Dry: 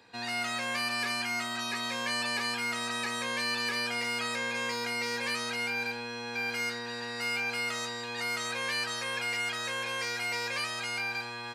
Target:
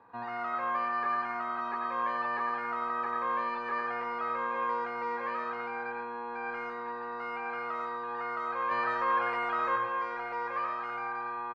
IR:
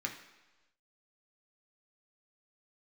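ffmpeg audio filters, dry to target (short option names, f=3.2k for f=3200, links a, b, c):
-filter_complex "[0:a]lowpass=f=1.1k:t=q:w=4.3,asettb=1/sr,asplit=3[a][b][c];[a]atrim=end=8.714[d];[b]atrim=start=8.71:end=9.76,asetpts=PTS-STARTPTS,afade=t=in:d=0.004:c=qsin,afade=t=out:st=1.046:d=0.004:c=qsin,acontrast=34[e];[c]atrim=start=9.756[f];[d][e]acrossfade=d=0.004:c1=hsin:c2=qsin[g];[g][f]acrossfade=d=0.004:c1=qsin:c2=hsin,aecho=1:1:115:0.251,asplit=2[h][i];[1:a]atrim=start_sample=2205,adelay=91[j];[i][j]afir=irnorm=-1:irlink=0,volume=-8dB[k];[h][k]amix=inputs=2:normalize=0,volume=-3dB"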